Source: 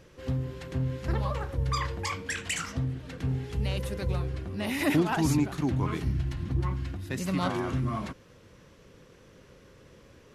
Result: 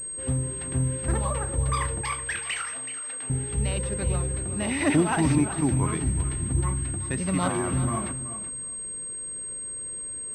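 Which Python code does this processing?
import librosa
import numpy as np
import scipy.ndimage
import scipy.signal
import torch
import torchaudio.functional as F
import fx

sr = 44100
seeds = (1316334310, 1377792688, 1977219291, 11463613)

y = fx.highpass(x, sr, hz=720.0, slope=12, at=(2.01, 3.3))
y = fx.echo_feedback(y, sr, ms=376, feedback_pct=16, wet_db=-12.0)
y = fx.pwm(y, sr, carrier_hz=8400.0)
y = y * librosa.db_to_amplitude(3.0)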